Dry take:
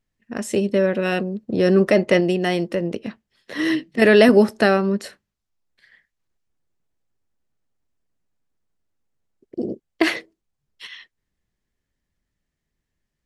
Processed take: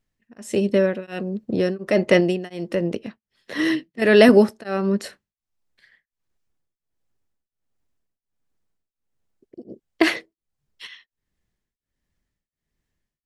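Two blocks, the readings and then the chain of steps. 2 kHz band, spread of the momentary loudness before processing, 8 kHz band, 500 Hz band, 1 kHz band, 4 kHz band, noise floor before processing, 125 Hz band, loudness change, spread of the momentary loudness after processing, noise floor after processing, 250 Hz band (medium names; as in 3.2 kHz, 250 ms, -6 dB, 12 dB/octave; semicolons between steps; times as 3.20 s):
-2.0 dB, 19 LU, -2.5 dB, -1.5 dB, -3.0 dB, -1.0 dB, -81 dBFS, -2.5 dB, -1.0 dB, 16 LU, under -85 dBFS, -1.0 dB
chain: tremolo of two beating tones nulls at 1.4 Hz; trim +1 dB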